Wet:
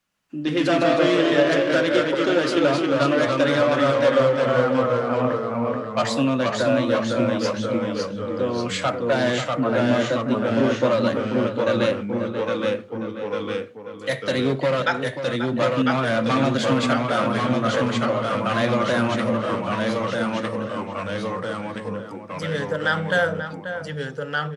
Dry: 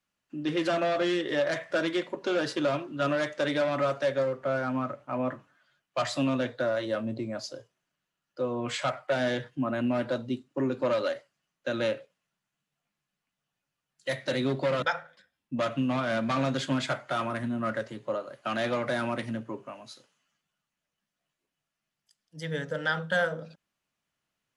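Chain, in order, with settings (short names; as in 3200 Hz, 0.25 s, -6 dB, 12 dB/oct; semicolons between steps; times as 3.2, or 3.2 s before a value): echoes that change speed 0.116 s, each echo -1 st, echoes 3; outdoor echo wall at 92 m, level -9 dB; gain +6 dB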